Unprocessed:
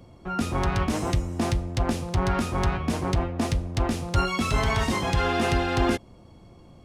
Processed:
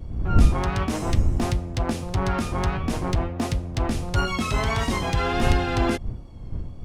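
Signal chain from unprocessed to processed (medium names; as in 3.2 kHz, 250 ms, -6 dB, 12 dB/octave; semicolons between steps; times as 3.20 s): wind noise 81 Hz -26 dBFS; vibrato 1.5 Hz 36 cents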